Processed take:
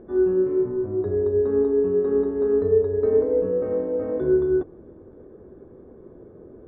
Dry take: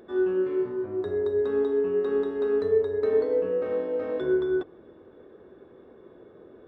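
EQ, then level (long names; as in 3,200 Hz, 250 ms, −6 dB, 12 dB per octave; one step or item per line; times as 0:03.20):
Bessel low-pass filter 1,800 Hz, order 2
high-frequency loss of the air 98 metres
spectral tilt −3.5 dB per octave
0.0 dB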